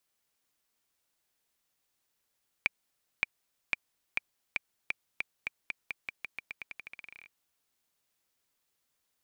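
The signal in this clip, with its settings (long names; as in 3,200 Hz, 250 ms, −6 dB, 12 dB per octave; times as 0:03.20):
bouncing ball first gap 0.57 s, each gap 0.88, 2,360 Hz, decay 19 ms −11 dBFS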